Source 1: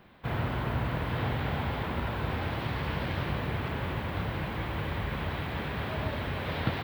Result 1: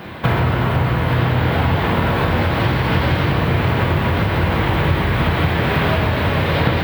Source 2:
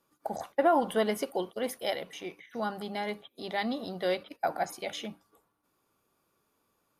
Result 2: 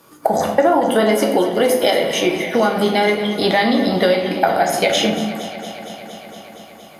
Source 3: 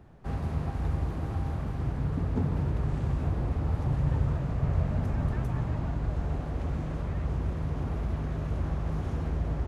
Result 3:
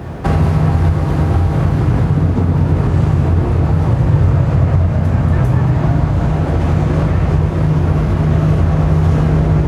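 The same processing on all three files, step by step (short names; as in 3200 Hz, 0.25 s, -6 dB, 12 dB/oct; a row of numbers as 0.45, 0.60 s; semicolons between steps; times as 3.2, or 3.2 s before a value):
shoebox room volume 80 m³, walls mixed, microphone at 0.62 m; compressor 6:1, threshold -36 dBFS; HPF 64 Hz; on a send: echo with dull and thin repeats by turns 0.116 s, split 840 Hz, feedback 88%, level -12.5 dB; on the sum: normalise peaks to -1.5 dBFS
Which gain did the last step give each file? +22.0, +23.0, +26.5 dB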